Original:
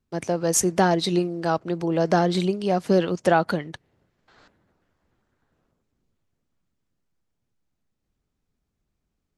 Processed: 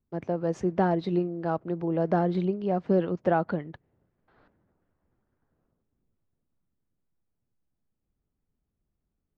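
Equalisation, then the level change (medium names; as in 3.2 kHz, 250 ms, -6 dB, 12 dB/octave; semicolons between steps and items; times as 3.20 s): tape spacing loss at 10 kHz 43 dB; -2.5 dB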